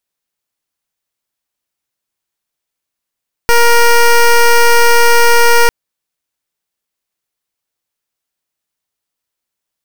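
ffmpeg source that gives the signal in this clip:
-f lavfi -i "aevalsrc='0.473*(2*lt(mod(471*t,1),0.13)-1)':d=2.2:s=44100"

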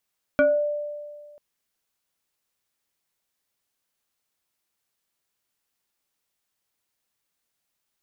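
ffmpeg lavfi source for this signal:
-f lavfi -i "aevalsrc='0.211*pow(10,-3*t/1.79)*sin(2*PI*590*t+1.2*pow(10,-3*t/0.34)*sin(2*PI*1.47*590*t))':d=0.99:s=44100"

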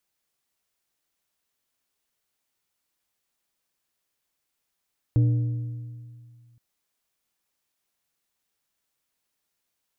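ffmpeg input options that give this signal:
-f lavfi -i "aevalsrc='0.178*pow(10,-3*t/2.12)*sin(2*PI*119*t)+0.0473*pow(10,-3*t/1.61)*sin(2*PI*297.5*t)+0.0126*pow(10,-3*t/1.399)*sin(2*PI*476*t)+0.00335*pow(10,-3*t/1.308)*sin(2*PI*595*t)+0.000891*pow(10,-3*t/1.209)*sin(2*PI*773.5*t)':d=1.42:s=44100"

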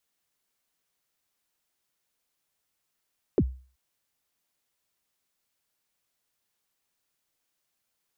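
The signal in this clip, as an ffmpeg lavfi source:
-f lavfi -i "aevalsrc='0.178*pow(10,-3*t/0.39)*sin(2*PI*(480*0.054/log(64/480)*(exp(log(64/480)*min(t,0.054)/0.054)-1)+64*max(t-0.054,0)))':d=0.38:s=44100"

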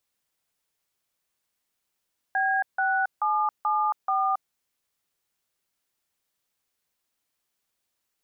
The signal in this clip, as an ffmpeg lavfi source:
-f lavfi -i "aevalsrc='0.0631*clip(min(mod(t,0.433),0.274-mod(t,0.433))/0.002,0,1)*(eq(floor(t/0.433),0)*(sin(2*PI*770*mod(t,0.433))+sin(2*PI*1633*mod(t,0.433)))+eq(floor(t/0.433),1)*(sin(2*PI*770*mod(t,0.433))+sin(2*PI*1477*mod(t,0.433)))+eq(floor(t/0.433),2)*(sin(2*PI*852*mod(t,0.433))+sin(2*PI*1209*mod(t,0.433)))+eq(floor(t/0.433),3)*(sin(2*PI*852*mod(t,0.433))+sin(2*PI*1209*mod(t,0.433)))+eq(floor(t/0.433),4)*(sin(2*PI*770*mod(t,0.433))+sin(2*PI*1209*mod(t,0.433))))':d=2.165:s=44100"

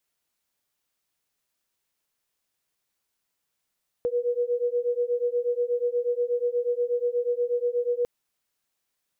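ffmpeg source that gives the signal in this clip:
-f lavfi -i "aevalsrc='0.0501*(sin(2*PI*480*t)+sin(2*PI*488.3*t))':d=4:s=44100"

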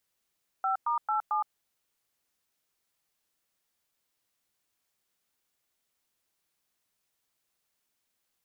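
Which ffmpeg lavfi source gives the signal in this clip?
-f lavfi -i "aevalsrc='0.0398*clip(min(mod(t,0.223),0.116-mod(t,0.223))/0.002,0,1)*(eq(floor(t/0.223),0)*(sin(2*PI*770*mod(t,0.223))+sin(2*PI*1336*mod(t,0.223)))+eq(floor(t/0.223),1)*(sin(2*PI*941*mod(t,0.223))+sin(2*PI*1209*mod(t,0.223)))+eq(floor(t/0.223),2)*(sin(2*PI*852*mod(t,0.223))+sin(2*PI*1336*mod(t,0.223)))+eq(floor(t/0.223),3)*(sin(2*PI*852*mod(t,0.223))+sin(2*PI*1209*mod(t,0.223))))':d=0.892:s=44100"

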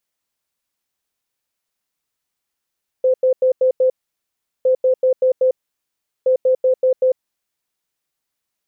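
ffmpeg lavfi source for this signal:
-f lavfi -i "aevalsrc='0.282*sin(2*PI*515*t)*clip(min(mod(mod(t,1.61),0.19),0.1-mod(mod(t,1.61),0.19))/0.005,0,1)*lt(mod(t,1.61),0.95)':d=4.83:s=44100"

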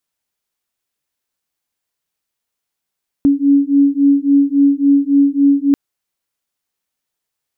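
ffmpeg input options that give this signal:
-f lavfi -i "aevalsrc='0.251*(sin(2*PI*279*t)+sin(2*PI*282.6*t))':d=2.49:s=44100"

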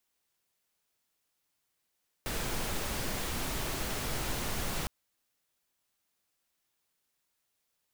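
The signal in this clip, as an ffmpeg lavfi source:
-f lavfi -i "anoisesrc=c=pink:a=0.102:d=2.61:r=44100:seed=1"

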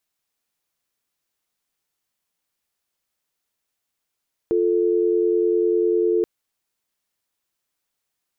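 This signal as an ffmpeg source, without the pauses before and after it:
-f lavfi -i "aevalsrc='0.112*(sin(2*PI*350*t)+sin(2*PI*440*t))':d=1.73:s=44100"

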